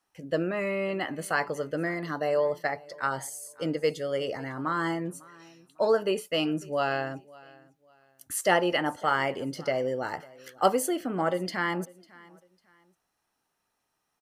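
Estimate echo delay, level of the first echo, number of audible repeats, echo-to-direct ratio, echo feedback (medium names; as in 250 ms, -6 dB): 550 ms, -23.0 dB, 2, -22.5 dB, 29%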